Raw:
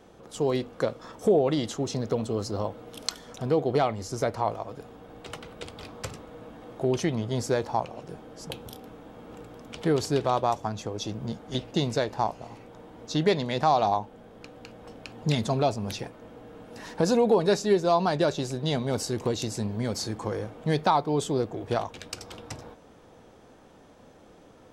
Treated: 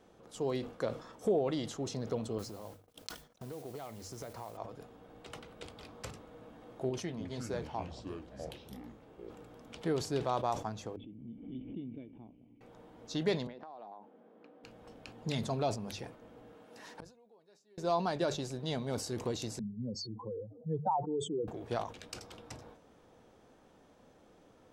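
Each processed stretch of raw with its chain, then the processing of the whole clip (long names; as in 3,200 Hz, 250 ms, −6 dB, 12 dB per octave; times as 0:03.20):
0:02.38–0:04.57: noise gate −42 dBFS, range −36 dB + noise that follows the level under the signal 16 dB + downward compressor, threshold −32 dBFS
0:06.89–0:09.30: flanger 1.5 Hz, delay 6.1 ms, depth 8.6 ms, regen −66% + delay with pitch and tempo change per echo 296 ms, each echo −6 semitones, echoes 2, each echo −6 dB
0:10.96–0:12.61: formant resonators in series i + high-frequency loss of the air 340 metres + background raised ahead of every attack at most 64 dB per second
0:13.47–0:14.64: high-pass filter 210 Hz 24 dB per octave + downward compressor 16 to 1, threshold −33 dBFS + head-to-tape spacing loss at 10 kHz 35 dB
0:16.53–0:17.78: high-pass filter 310 Hz 6 dB per octave + gate with flip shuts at −27 dBFS, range −32 dB
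0:19.59–0:21.48: expanding power law on the bin magnitudes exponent 3 + high-pass filter 110 Hz 24 dB per octave
whole clip: mains-hum notches 50/100/150 Hz; level that may fall only so fast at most 120 dB per second; level −8.5 dB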